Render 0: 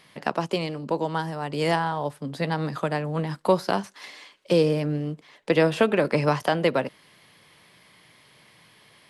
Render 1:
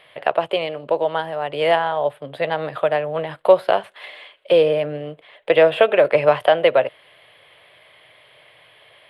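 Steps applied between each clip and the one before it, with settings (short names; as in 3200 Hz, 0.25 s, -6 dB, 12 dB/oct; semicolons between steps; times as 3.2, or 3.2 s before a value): EQ curve 120 Hz 0 dB, 210 Hz -12 dB, 620 Hz +14 dB, 910 Hz +4 dB, 3300 Hz +9 dB, 5900 Hz -20 dB, 9200 Hz -4 dB; gain -1.5 dB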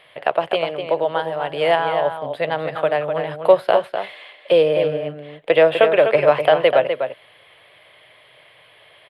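outdoor echo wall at 43 m, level -7 dB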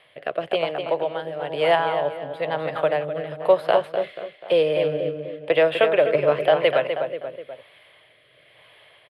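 outdoor echo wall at 83 m, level -11 dB; rotary speaker horn 1 Hz; gain -1.5 dB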